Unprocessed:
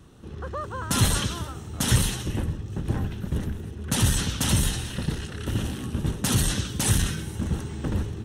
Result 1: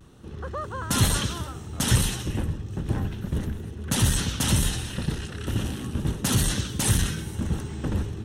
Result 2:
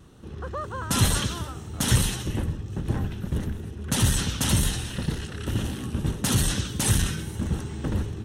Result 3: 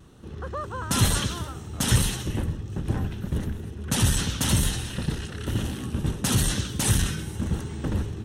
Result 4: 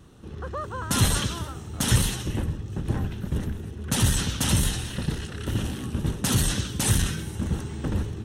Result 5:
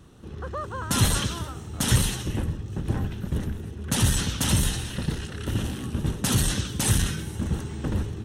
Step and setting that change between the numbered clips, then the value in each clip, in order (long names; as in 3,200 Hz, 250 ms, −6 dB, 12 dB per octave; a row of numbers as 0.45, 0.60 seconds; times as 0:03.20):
pitch vibrato, speed: 0.34, 1.8, 0.94, 3.5, 5.7 Hertz